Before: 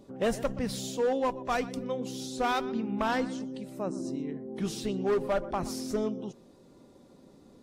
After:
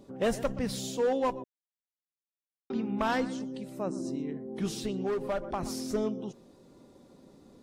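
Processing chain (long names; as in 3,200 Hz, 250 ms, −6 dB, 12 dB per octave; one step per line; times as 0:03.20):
0:01.44–0:02.70: silence
0:04.72–0:05.63: downward compressor, threshold −28 dBFS, peak gain reduction 5 dB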